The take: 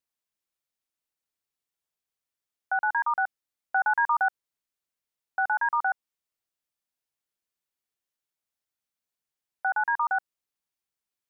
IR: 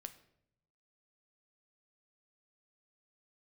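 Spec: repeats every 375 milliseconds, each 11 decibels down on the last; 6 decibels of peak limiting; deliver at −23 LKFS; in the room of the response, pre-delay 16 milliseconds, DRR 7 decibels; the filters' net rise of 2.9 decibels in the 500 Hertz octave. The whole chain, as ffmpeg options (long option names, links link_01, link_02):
-filter_complex "[0:a]equalizer=frequency=500:width_type=o:gain=5,alimiter=limit=-21dB:level=0:latency=1,aecho=1:1:375|750|1125:0.282|0.0789|0.0221,asplit=2[link_01][link_02];[1:a]atrim=start_sample=2205,adelay=16[link_03];[link_02][link_03]afir=irnorm=-1:irlink=0,volume=-2dB[link_04];[link_01][link_04]amix=inputs=2:normalize=0,volume=7.5dB"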